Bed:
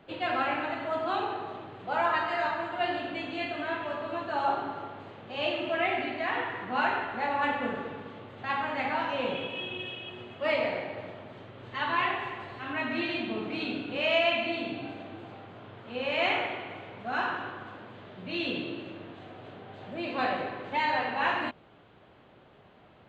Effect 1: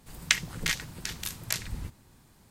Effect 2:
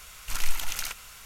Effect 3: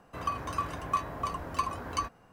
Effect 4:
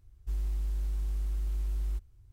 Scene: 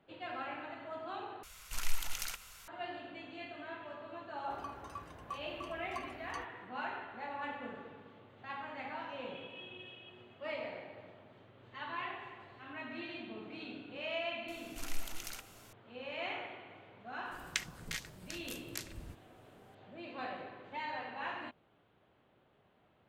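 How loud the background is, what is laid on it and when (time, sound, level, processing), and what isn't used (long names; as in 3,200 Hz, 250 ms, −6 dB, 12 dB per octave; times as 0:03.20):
bed −13 dB
0:01.43: overwrite with 2 −7.5 dB
0:04.37: mix in 3 −14.5 dB
0:14.48: mix in 2 −12.5 dB
0:17.25: mix in 1 −12 dB
not used: 4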